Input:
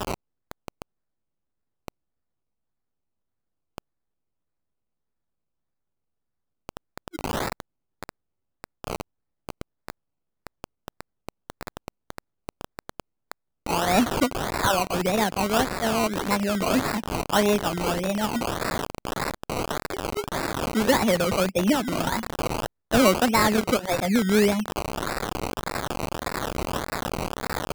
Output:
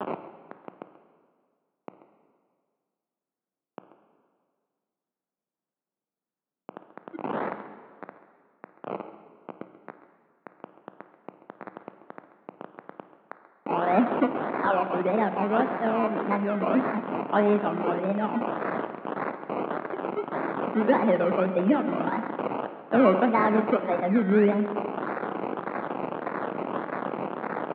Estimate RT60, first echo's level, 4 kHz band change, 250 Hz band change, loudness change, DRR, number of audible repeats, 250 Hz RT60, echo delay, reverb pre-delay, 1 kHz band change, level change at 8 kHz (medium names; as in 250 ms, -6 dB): 1.9 s, -18.5 dB, -18.0 dB, -0.5 dB, -1.5 dB, 8.5 dB, 2, 2.0 s, 53 ms, 15 ms, -1.0 dB, under -40 dB